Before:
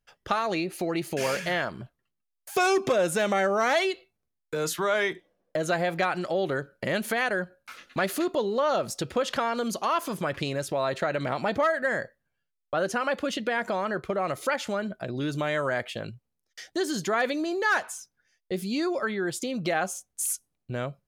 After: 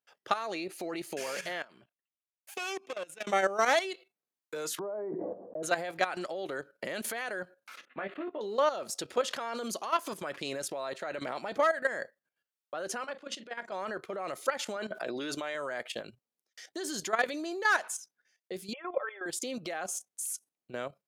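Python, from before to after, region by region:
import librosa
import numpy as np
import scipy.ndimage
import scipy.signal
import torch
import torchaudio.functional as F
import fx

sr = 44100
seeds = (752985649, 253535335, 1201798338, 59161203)

y = fx.chain(x, sr, fx.peak_eq(hz=2600.0, db=9.5, octaves=0.75),
    fx.level_steps(step_db=22),
    fx.tube_stage(drive_db=22.0, bias=0.7), at=(1.62, 3.27))
y = fx.chain(y, sr, fx.cheby2_lowpass(hz=3700.0, order=4, stop_db=70),
    fx.low_shelf(hz=230.0, db=4.5),
    fx.sustainer(db_per_s=24.0), at=(4.79, 5.63))
y = fx.chain(y, sr, fx.cheby2_lowpass(hz=5300.0, order=4, stop_db=40),
    fx.doubler(ms=20.0, db=-4),
    fx.level_steps(step_db=9), at=(7.85, 8.41))
y = fx.chain(y, sr, fx.lowpass(hz=8100.0, slope=12),
    fx.level_steps(step_db=18),
    fx.doubler(ms=35.0, db=-10.0), at=(13.03, 13.72))
y = fx.chain(y, sr, fx.highpass(hz=430.0, slope=6),
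    fx.high_shelf(hz=7800.0, db=-9.0),
    fx.env_flatten(amount_pct=70), at=(14.76, 15.55))
y = fx.chain(y, sr, fx.brickwall_bandpass(low_hz=360.0, high_hz=3500.0),
    fx.air_absorb(metres=340.0),
    fx.comb(ms=3.8, depth=0.81), at=(18.73, 19.26))
y = scipy.signal.sosfilt(scipy.signal.butter(2, 290.0, 'highpass', fs=sr, output='sos'), y)
y = fx.dynamic_eq(y, sr, hz=8300.0, q=0.72, threshold_db=-48.0, ratio=4.0, max_db=4)
y = fx.level_steps(y, sr, step_db=12)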